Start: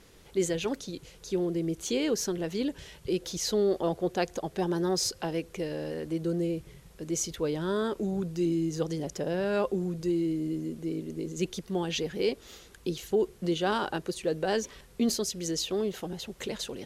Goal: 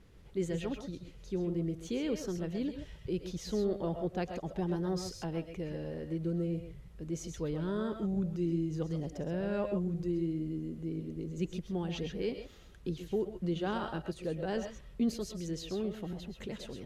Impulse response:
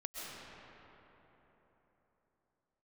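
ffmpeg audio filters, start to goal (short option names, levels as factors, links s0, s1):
-filter_complex "[0:a]bass=f=250:g=10,treble=f=4000:g=-8[s0];[1:a]atrim=start_sample=2205,atrim=end_sample=6174[s1];[s0][s1]afir=irnorm=-1:irlink=0,volume=0.668"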